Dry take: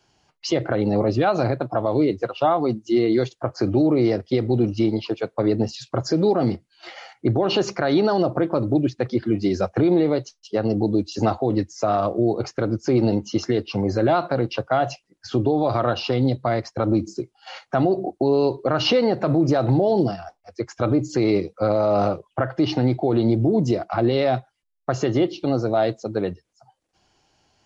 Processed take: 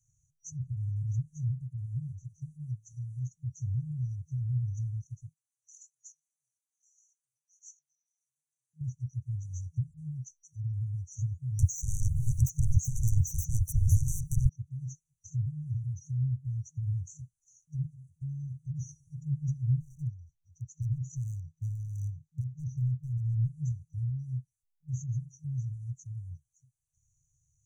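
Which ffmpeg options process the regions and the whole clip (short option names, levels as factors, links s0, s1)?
-filter_complex "[0:a]asettb=1/sr,asplit=3[s0][s1][s2];[s0]atrim=end=5.334[s3];[s1]atrim=start=5.33:end=8.81,asetpts=PTS-STARTPTS,afade=t=in:d=0.004:c=qsin,afade=t=out:st=3.476:d=0.004:c=qsin,flanger=delay=19:depth=5.2:speed=2.9,acompressor=threshold=0.0224:ratio=3:attack=3.2:release=140:knee=1:detection=peak,highpass=f=730:w=0.5412,highpass=f=730:w=1.3066[s4];[s2]atrim=start=8.806[s5];[s3][s4]acrossfade=d=0.004:c1=hsin:c2=qsin[s6];[s6][s5]acrossfade=d=0.004:c1=qsin:c2=hsin,asettb=1/sr,asplit=3[s7][s8][s9];[s7]atrim=end=11.594[s10];[s8]atrim=start=11.59:end=14.49,asetpts=PTS-STARTPTS,afade=t=in:d=0.004:c=qsin,afade=t=out:st=2.896:d=0.004:c=qsin,aemphasis=mode=production:type=75fm,aeval=exprs='0.355*sin(PI/2*8.91*val(0)/0.355)':c=same[s11];[s9]atrim=start=14.486[s12];[s10][s11]acrossfade=d=0.004:c1=hsin:c2=qsin[s13];[s13][s12]acrossfade=d=0.004:c1=qsin:c2=hsin,asettb=1/sr,asplit=3[s14][s15][s16];[s14]atrim=end=19.804[s17];[s15]atrim=start=19.8:end=23.49,asetpts=PTS-STARTPTS,afade=t=in:d=0.004:c=qsin,afade=t=out:st=3.686:d=0.004:c=qsin,lowpass=4500,highshelf=f=2100:g=4,asoftclip=type=hard:threshold=0.237[s18];[s16]atrim=start=23.486[s19];[s17][s18]acrossfade=d=0.004:c1=hsin:c2=qsin[s20];[s20][s19]acrossfade=d=0.004:c1=qsin:c2=hsin,afftfilt=real='re*(1-between(b*sr/4096,160,5800))':imag='im*(1-between(b*sr/4096,160,5800))':win_size=4096:overlap=0.75,acrossover=split=140[s21][s22];[s22]acompressor=threshold=0.01:ratio=4[s23];[s21][s23]amix=inputs=2:normalize=0,volume=0.75"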